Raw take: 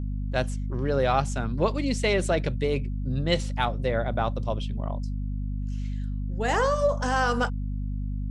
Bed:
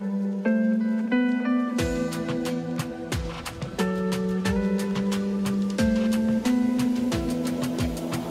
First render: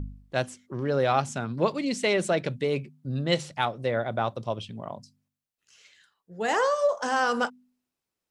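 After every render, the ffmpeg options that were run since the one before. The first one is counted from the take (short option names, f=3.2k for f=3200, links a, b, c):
-af "bandreject=f=50:t=h:w=4,bandreject=f=100:t=h:w=4,bandreject=f=150:t=h:w=4,bandreject=f=200:t=h:w=4,bandreject=f=250:t=h:w=4"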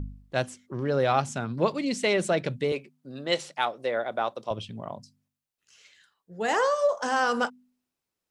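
-filter_complex "[0:a]asettb=1/sr,asplit=3[a][b][c];[a]atrim=end=2.724[d];[b]atrim=start=2.72:end=4.51,asetpts=PTS-STARTPTS,afade=t=in:d=0.004:c=qsin,afade=t=out:st=1.786:d=0.004:c=qsin,highpass=340[e];[c]atrim=start=4.506[f];[d][e]acrossfade=d=0.004:c1=hsin:c2=qsin[g];[g][f]acrossfade=d=0.004:c1=qsin:c2=hsin"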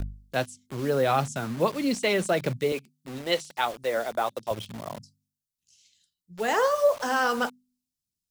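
-filter_complex "[0:a]aphaser=in_gain=1:out_gain=1:delay=4.6:decay=0.28:speed=1.6:type=sinusoidal,acrossover=split=240|3500[a][b][c];[b]acrusher=bits=6:mix=0:aa=0.000001[d];[a][d][c]amix=inputs=3:normalize=0"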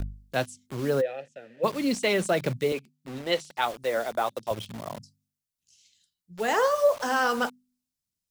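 -filter_complex "[0:a]asplit=3[a][b][c];[a]afade=t=out:st=1:d=0.02[d];[b]asplit=3[e][f][g];[e]bandpass=f=530:t=q:w=8,volume=0dB[h];[f]bandpass=f=1.84k:t=q:w=8,volume=-6dB[i];[g]bandpass=f=2.48k:t=q:w=8,volume=-9dB[j];[h][i][j]amix=inputs=3:normalize=0,afade=t=in:st=1:d=0.02,afade=t=out:st=1.63:d=0.02[k];[c]afade=t=in:st=1.63:d=0.02[l];[d][k][l]amix=inputs=3:normalize=0,asettb=1/sr,asplit=3[m][n][o];[m]atrim=end=2.734[p];[n]atrim=start=2.73:end=3.62,asetpts=PTS-STARTPTS,afade=t=in:d=0.004:c=qsin,afade=t=out:st=0.886:d=0.004:c=qsin,highshelf=f=5.5k:g=-5.5[q];[o]atrim=start=3.616[r];[p][q]acrossfade=d=0.004:c1=hsin:c2=qsin[s];[s][r]acrossfade=d=0.004:c1=qsin:c2=hsin"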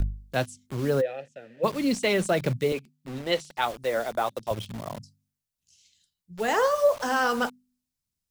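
-af "lowshelf=f=110:g=9"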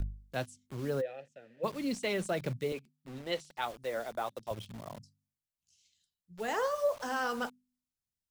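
-af "volume=-9dB"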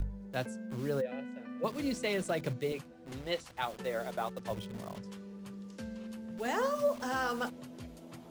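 -filter_complex "[1:a]volume=-20.5dB[a];[0:a][a]amix=inputs=2:normalize=0"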